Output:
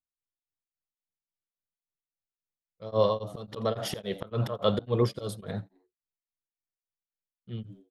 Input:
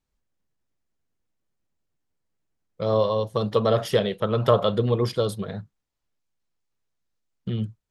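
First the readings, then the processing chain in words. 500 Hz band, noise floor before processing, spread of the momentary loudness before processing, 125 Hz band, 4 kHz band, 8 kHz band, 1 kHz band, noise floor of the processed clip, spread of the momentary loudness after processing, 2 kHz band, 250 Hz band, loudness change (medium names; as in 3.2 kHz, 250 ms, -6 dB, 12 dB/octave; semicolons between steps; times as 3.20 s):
-7.0 dB, -81 dBFS, 12 LU, -6.5 dB, -5.5 dB, -2.0 dB, -7.0 dB, under -85 dBFS, 14 LU, -7.5 dB, -6.0 dB, -6.5 dB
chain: gate with hold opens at -41 dBFS; slow attack 178 ms; frequency-shifting echo 86 ms, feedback 33%, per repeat +86 Hz, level -20 dB; tremolo of two beating tones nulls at 3.6 Hz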